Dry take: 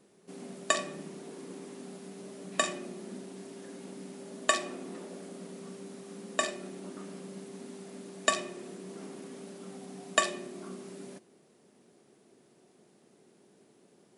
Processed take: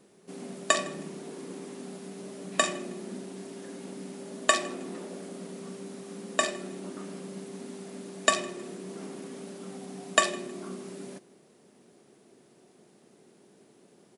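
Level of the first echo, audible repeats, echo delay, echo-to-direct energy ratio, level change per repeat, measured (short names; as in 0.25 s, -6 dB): -24.0 dB, 2, 0.158 s, -23.5 dB, -10.0 dB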